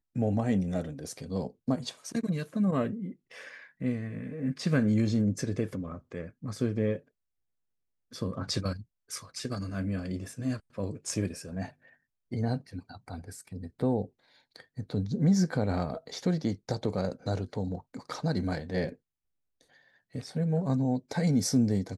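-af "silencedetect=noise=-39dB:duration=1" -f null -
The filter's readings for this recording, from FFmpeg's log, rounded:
silence_start: 6.98
silence_end: 8.14 | silence_duration: 1.16
silence_start: 18.93
silence_end: 20.15 | silence_duration: 1.22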